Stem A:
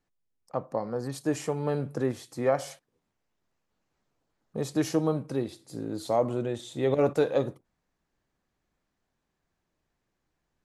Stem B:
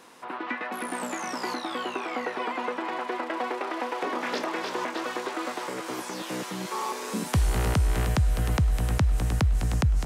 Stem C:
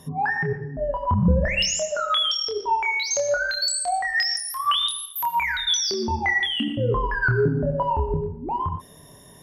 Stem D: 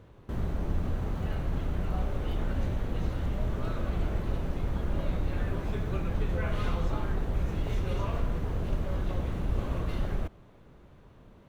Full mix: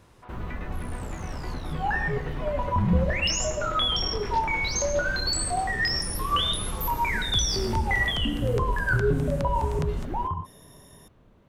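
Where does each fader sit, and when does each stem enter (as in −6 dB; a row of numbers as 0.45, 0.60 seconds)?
muted, −9.5 dB, −3.5 dB, −3.5 dB; muted, 0.00 s, 1.65 s, 0.00 s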